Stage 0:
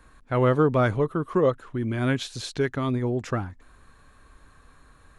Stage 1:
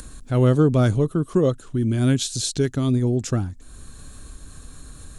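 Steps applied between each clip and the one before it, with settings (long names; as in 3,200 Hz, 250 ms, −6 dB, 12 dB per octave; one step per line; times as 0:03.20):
graphic EQ with 10 bands 500 Hz −5 dB, 1,000 Hz −11 dB, 2,000 Hz −11 dB, 8,000 Hz +9 dB
in parallel at +2.5 dB: upward compression, threshold −32 dBFS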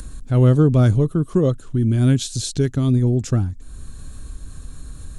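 low-shelf EQ 190 Hz +9 dB
level −1.5 dB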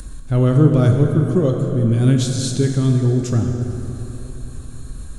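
dense smooth reverb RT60 3.7 s, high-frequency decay 0.6×, DRR 2.5 dB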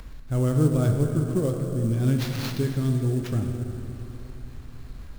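sample-rate reduction 8,700 Hz, jitter 20%
level −8 dB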